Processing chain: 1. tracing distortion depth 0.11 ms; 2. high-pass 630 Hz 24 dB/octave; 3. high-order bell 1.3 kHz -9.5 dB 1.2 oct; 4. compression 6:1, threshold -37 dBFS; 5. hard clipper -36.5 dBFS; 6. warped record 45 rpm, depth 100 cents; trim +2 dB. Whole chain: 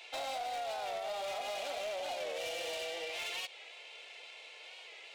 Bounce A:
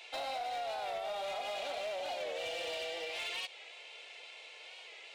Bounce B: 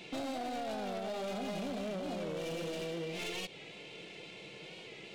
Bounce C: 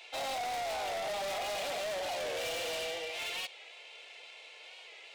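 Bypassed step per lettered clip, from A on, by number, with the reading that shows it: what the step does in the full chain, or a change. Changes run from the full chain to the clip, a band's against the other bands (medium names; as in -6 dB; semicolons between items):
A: 1, 8 kHz band -4.5 dB; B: 2, momentary loudness spread change -2 LU; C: 4, mean gain reduction 5.0 dB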